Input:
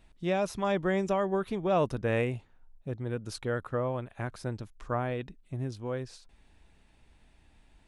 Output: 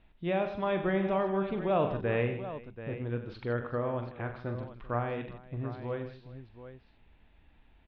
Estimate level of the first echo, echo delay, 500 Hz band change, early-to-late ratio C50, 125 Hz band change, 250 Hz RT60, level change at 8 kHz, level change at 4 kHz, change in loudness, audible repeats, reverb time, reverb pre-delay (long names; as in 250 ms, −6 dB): −9.0 dB, 42 ms, −0.5 dB, no reverb audible, −1.0 dB, no reverb audible, below −30 dB, −4.0 dB, −1.0 dB, 5, no reverb audible, no reverb audible